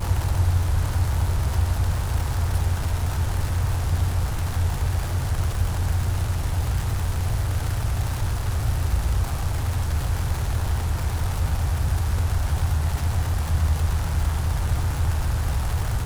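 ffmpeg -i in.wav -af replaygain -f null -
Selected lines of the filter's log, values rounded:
track_gain = +14.2 dB
track_peak = 0.212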